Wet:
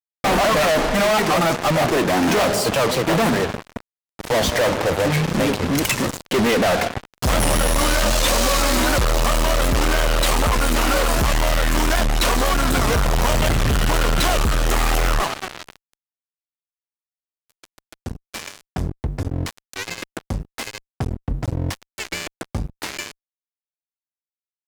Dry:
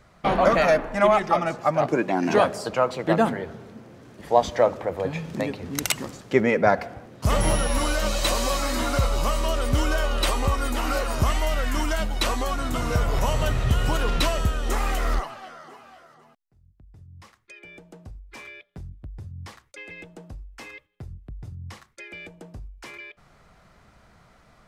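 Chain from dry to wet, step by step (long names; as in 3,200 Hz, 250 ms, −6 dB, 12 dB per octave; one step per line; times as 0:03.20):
fuzz pedal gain 40 dB, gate −37 dBFS
wow of a warped record 78 rpm, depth 160 cents
level −2.5 dB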